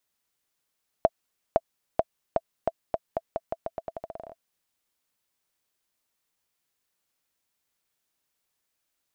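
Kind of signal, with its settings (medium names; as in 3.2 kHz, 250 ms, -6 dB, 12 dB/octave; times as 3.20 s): bouncing ball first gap 0.51 s, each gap 0.85, 661 Hz, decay 41 ms -6.5 dBFS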